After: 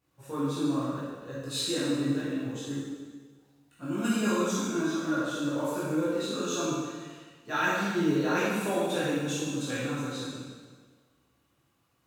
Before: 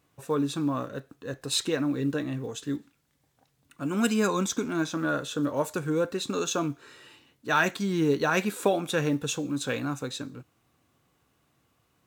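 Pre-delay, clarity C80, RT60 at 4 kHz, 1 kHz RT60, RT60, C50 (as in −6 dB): 7 ms, 0.0 dB, 1.4 s, 1.5 s, 1.5 s, −3.0 dB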